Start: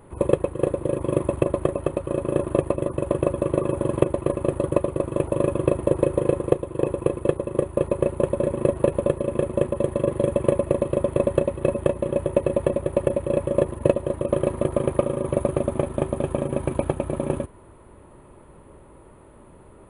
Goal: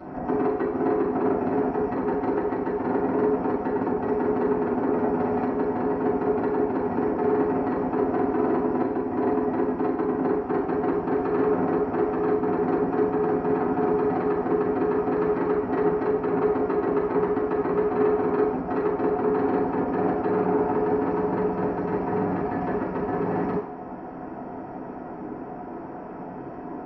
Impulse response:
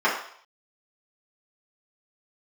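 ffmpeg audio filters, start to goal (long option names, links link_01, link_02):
-filter_complex "[0:a]equalizer=frequency=1000:width=1.5:gain=-3,asplit=2[link_01][link_02];[link_02]acompressor=threshold=-36dB:ratio=6,volume=2dB[link_03];[link_01][link_03]amix=inputs=2:normalize=0,alimiter=limit=-12.5dB:level=0:latency=1:release=51,aresample=16000,asoftclip=type=tanh:threshold=-26dB,aresample=44100[link_04];[1:a]atrim=start_sample=2205,asetrate=48510,aresample=44100[link_05];[link_04][link_05]afir=irnorm=-1:irlink=0,asetrate=32667,aresample=44100,volume=-7dB"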